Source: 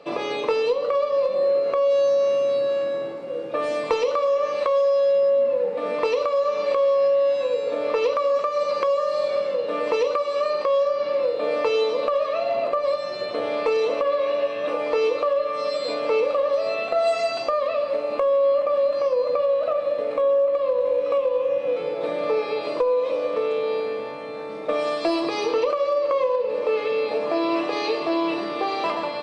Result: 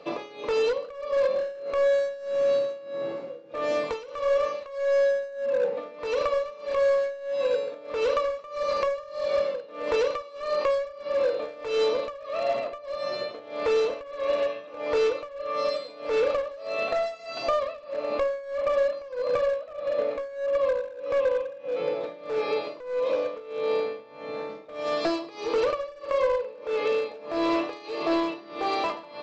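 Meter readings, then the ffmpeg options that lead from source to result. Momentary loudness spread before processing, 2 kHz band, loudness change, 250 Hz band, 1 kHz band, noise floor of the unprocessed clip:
6 LU, −2.5 dB, −5.0 dB, −4.0 dB, −5.5 dB, −30 dBFS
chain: -af "aresample=16000,asoftclip=type=hard:threshold=-18.5dB,aresample=44100,bandreject=frequency=96.37:width_type=h:width=4,bandreject=frequency=192.74:width_type=h:width=4,bandreject=frequency=289.11:width_type=h:width=4,bandreject=frequency=385.48:width_type=h:width=4,bandreject=frequency=481.85:width_type=h:width=4,bandreject=frequency=578.22:width_type=h:width=4,bandreject=frequency=674.59:width_type=h:width=4,bandreject=frequency=770.96:width_type=h:width=4,bandreject=frequency=867.33:width_type=h:width=4,bandreject=frequency=963.7:width_type=h:width=4,bandreject=frequency=1060.07:width_type=h:width=4,bandreject=frequency=1156.44:width_type=h:width=4,bandreject=frequency=1252.81:width_type=h:width=4,bandreject=frequency=1349.18:width_type=h:width=4,bandreject=frequency=1445.55:width_type=h:width=4,bandreject=frequency=1541.92:width_type=h:width=4,bandreject=frequency=1638.29:width_type=h:width=4,bandreject=frequency=1734.66:width_type=h:width=4,bandreject=frequency=1831.03:width_type=h:width=4,bandreject=frequency=1927.4:width_type=h:width=4,bandreject=frequency=2023.77:width_type=h:width=4,bandreject=frequency=2120.14:width_type=h:width=4,bandreject=frequency=2216.51:width_type=h:width=4,bandreject=frequency=2312.88:width_type=h:width=4,bandreject=frequency=2409.25:width_type=h:width=4,bandreject=frequency=2505.62:width_type=h:width=4,bandreject=frequency=2601.99:width_type=h:width=4,bandreject=frequency=2698.36:width_type=h:width=4,bandreject=frequency=2794.73:width_type=h:width=4,bandreject=frequency=2891.1:width_type=h:width=4,bandreject=frequency=2987.47:width_type=h:width=4,bandreject=frequency=3083.84:width_type=h:width=4,bandreject=frequency=3180.21:width_type=h:width=4,tremolo=f=1.6:d=0.89"

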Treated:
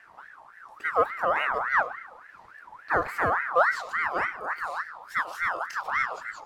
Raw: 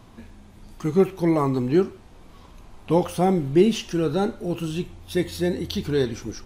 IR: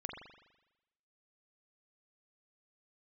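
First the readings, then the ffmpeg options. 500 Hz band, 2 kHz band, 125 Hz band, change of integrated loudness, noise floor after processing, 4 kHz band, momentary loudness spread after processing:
−8.5 dB, +13.0 dB, −21.0 dB, −3.5 dB, −52 dBFS, −10.0 dB, 10 LU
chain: -filter_complex "[0:a]tiltshelf=frequency=970:gain=4,asplit=2[link_01][link_02];[1:a]atrim=start_sample=2205,asetrate=52920,aresample=44100,adelay=101[link_03];[link_02][link_03]afir=irnorm=-1:irlink=0,volume=-12dB[link_04];[link_01][link_04]amix=inputs=2:normalize=0,aeval=exprs='val(0)*sin(2*PI*1300*n/s+1300*0.35/3.5*sin(2*PI*3.5*n/s))':channel_layout=same,volume=-5.5dB"

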